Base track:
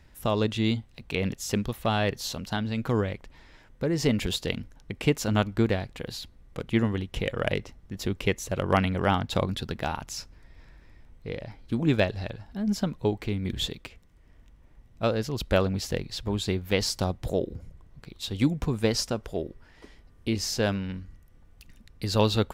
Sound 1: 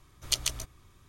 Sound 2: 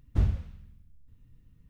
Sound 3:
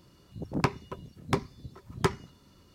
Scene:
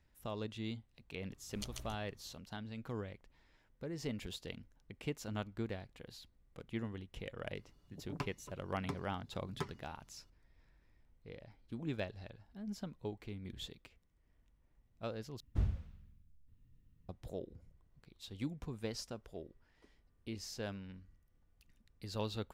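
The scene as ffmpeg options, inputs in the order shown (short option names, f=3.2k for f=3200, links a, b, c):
-filter_complex "[0:a]volume=-16.5dB[a];[1:a]tiltshelf=f=970:g=6[b];[3:a]aecho=1:1:6.9:0.43[c];[a]asplit=2[d][e];[d]atrim=end=15.404[f];[2:a]atrim=end=1.69,asetpts=PTS-STARTPTS,volume=-9dB[g];[e]atrim=start=17.086[h];[b]atrim=end=1.08,asetpts=PTS-STARTPTS,volume=-13.5dB,afade=t=in:d=0.004:c=hsin,afade=t=out:st=1.076:d=0.004:c=hsin,adelay=1300[i];[c]atrim=end=2.74,asetpts=PTS-STARTPTS,volume=-16dB,afade=t=in:d=0.004:c=hsin,afade=t=out:st=2.736:d=0.004:c=hsin,adelay=7560[j];[f][g]acrossfade=d=0.004:c1=hsin:c2=hsin[k];[k][h]acrossfade=d=0.004:c1=hsin:c2=hsin[l];[l][i][j]amix=inputs=3:normalize=0"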